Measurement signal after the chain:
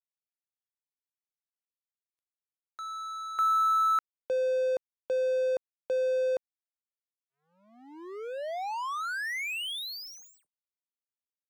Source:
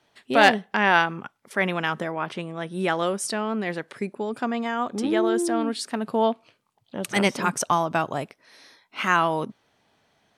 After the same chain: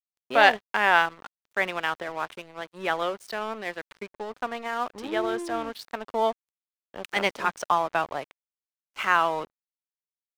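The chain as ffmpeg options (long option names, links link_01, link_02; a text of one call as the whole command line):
ffmpeg -i in.wav -filter_complex "[0:a]acrossover=split=410 4600:gain=0.224 1 0.2[link_01][link_02][link_03];[link_01][link_02][link_03]amix=inputs=3:normalize=0,aeval=exprs='sgn(val(0))*max(abs(val(0))-0.01,0)':channel_layout=same" out.wav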